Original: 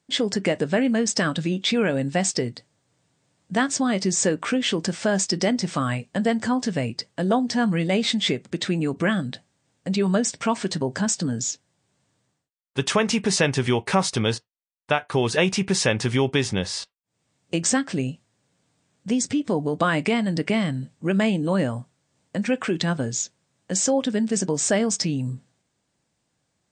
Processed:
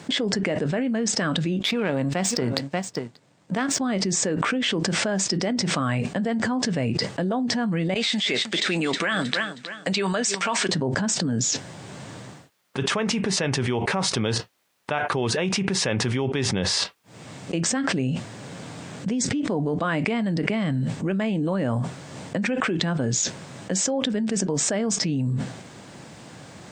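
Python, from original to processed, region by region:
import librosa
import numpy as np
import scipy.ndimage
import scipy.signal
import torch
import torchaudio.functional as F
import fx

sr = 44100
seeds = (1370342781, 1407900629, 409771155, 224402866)

y = fx.chain(x, sr, fx.highpass(hz=86.0, slope=12),
    fx.echo_single(ms=586, db=-23.0),
    fx.power_curve(exponent=1.4), at=(1.59, 3.81))
y = fx.chain(y, sr, fx.lowpass(hz=1800.0, slope=6),
    fx.differentiator(),
    fx.echo_feedback(ms=316, feedback_pct=31, wet_db=-16.0), at=(7.94, 10.69))
y = scipy.signal.sosfilt(scipy.signal.butter(2, 95.0, 'highpass', fs=sr, output='sos'), y)
y = fx.high_shelf(y, sr, hz=4600.0, db=-10.5)
y = fx.env_flatten(y, sr, amount_pct=100)
y = y * librosa.db_to_amplitude(-7.5)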